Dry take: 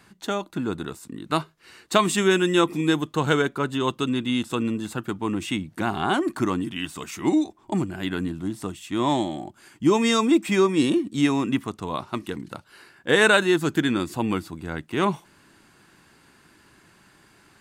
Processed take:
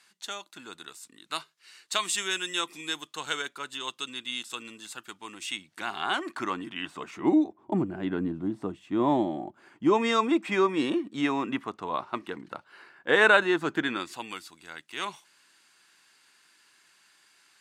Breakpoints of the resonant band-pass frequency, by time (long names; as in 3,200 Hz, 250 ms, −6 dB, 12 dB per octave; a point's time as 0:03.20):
resonant band-pass, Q 0.57
0:05.43 5,700 Hz
0:06.51 1,800 Hz
0:07.44 430 Hz
0:09.25 430 Hz
0:10.17 1,100 Hz
0:13.80 1,100 Hz
0:14.30 5,300 Hz